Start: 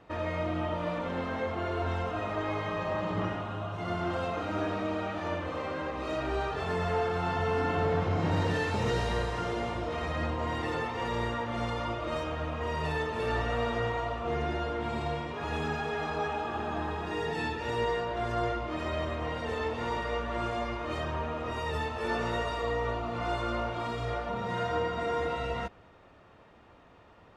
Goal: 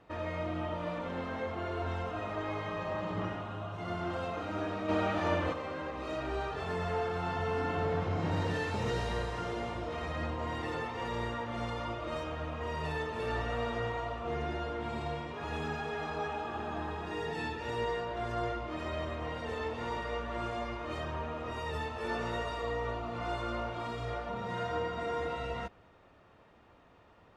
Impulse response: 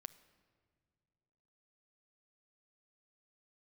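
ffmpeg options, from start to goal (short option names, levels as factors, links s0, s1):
-filter_complex "[0:a]asplit=3[s0][s1][s2];[s0]afade=t=out:st=4.88:d=0.02[s3];[s1]acontrast=82,afade=t=in:st=4.88:d=0.02,afade=t=out:st=5.52:d=0.02[s4];[s2]afade=t=in:st=5.52:d=0.02[s5];[s3][s4][s5]amix=inputs=3:normalize=0,volume=0.631"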